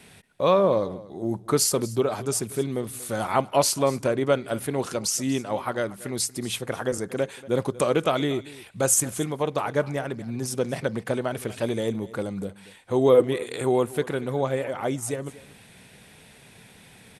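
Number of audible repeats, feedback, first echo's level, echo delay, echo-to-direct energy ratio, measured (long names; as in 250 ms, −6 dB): 1, repeats not evenly spaced, −19.0 dB, 235 ms, −19.0 dB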